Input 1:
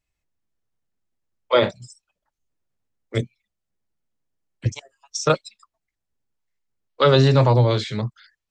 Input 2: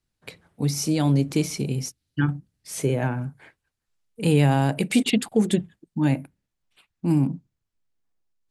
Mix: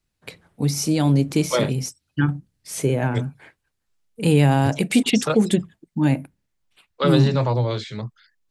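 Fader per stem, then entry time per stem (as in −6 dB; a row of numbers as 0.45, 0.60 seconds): −5.0, +2.5 decibels; 0.00, 0.00 seconds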